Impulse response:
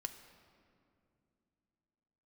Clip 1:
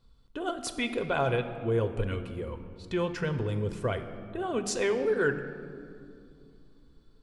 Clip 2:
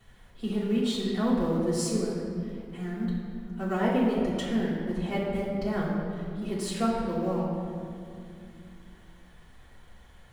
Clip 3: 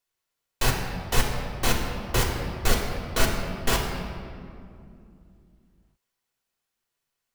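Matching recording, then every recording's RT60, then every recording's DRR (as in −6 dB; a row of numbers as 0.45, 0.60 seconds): 1; 2.6, 2.4, 2.5 seconds; 7.0, −10.0, −1.5 decibels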